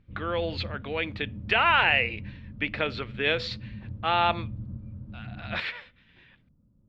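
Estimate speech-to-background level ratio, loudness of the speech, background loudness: 13.5 dB, -27.0 LUFS, -40.5 LUFS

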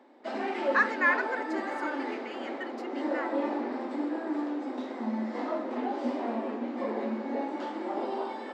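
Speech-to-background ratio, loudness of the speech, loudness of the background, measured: 3.0 dB, -30.5 LUFS, -33.5 LUFS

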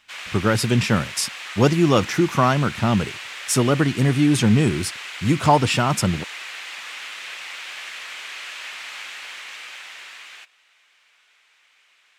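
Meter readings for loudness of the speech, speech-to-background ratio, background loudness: -20.0 LUFS, 13.0 dB, -33.0 LUFS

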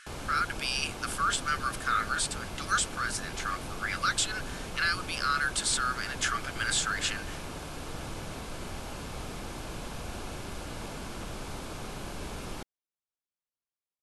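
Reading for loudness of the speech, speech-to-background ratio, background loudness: -30.5 LUFS, 9.5 dB, -40.0 LUFS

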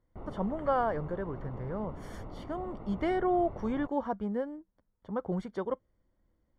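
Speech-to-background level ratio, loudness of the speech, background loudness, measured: 12.5 dB, -33.5 LUFS, -46.0 LUFS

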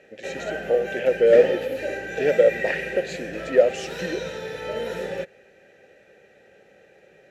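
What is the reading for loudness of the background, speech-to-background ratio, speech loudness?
-30.0 LUFS, 8.5 dB, -21.5 LUFS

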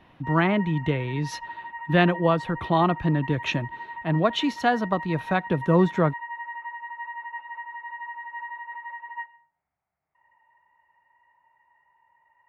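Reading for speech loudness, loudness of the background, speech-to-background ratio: -24.0 LUFS, -36.5 LUFS, 12.5 dB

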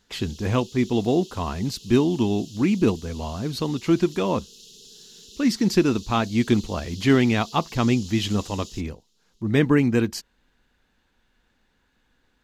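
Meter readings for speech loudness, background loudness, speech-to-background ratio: -23.0 LUFS, -43.0 LUFS, 20.0 dB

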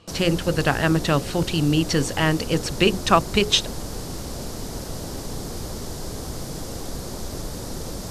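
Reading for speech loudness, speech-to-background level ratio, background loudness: -21.5 LUFS, 11.0 dB, -32.5 LUFS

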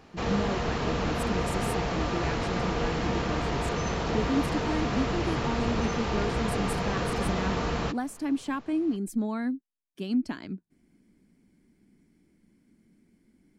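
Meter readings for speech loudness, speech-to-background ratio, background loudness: -33.5 LUFS, -4.0 dB, -29.5 LUFS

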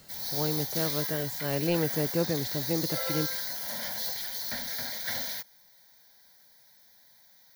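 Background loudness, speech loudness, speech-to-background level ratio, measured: -31.0 LUFS, -32.0 LUFS, -1.0 dB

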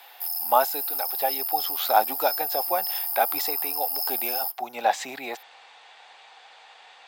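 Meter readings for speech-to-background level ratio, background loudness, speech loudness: -2.0 dB, -26.0 LUFS, -28.0 LUFS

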